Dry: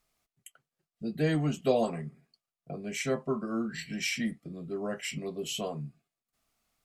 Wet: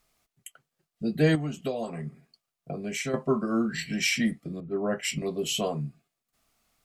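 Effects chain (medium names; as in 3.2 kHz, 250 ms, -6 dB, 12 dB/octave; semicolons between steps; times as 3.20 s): 1.35–3.14 s: compression 4:1, threshold -36 dBFS, peak gain reduction 13.5 dB; 4.60–5.22 s: three bands expanded up and down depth 70%; trim +6 dB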